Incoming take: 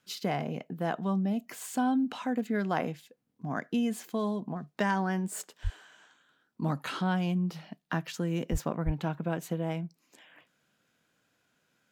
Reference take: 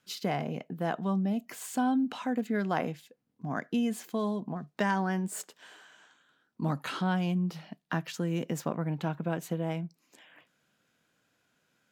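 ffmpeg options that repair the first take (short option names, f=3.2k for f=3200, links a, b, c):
-filter_complex "[0:a]asplit=3[a][b][c];[a]afade=t=out:st=5.63:d=0.02[d];[b]highpass=f=140:w=0.5412,highpass=f=140:w=1.3066,afade=t=in:st=5.63:d=0.02,afade=t=out:st=5.75:d=0.02[e];[c]afade=t=in:st=5.75:d=0.02[f];[d][e][f]amix=inputs=3:normalize=0,asplit=3[g][h][i];[g]afade=t=out:st=8.51:d=0.02[j];[h]highpass=f=140:w=0.5412,highpass=f=140:w=1.3066,afade=t=in:st=8.51:d=0.02,afade=t=out:st=8.63:d=0.02[k];[i]afade=t=in:st=8.63:d=0.02[l];[j][k][l]amix=inputs=3:normalize=0,asplit=3[m][n][o];[m]afade=t=out:st=8.85:d=0.02[p];[n]highpass=f=140:w=0.5412,highpass=f=140:w=1.3066,afade=t=in:st=8.85:d=0.02,afade=t=out:st=8.97:d=0.02[q];[o]afade=t=in:st=8.97:d=0.02[r];[p][q][r]amix=inputs=3:normalize=0"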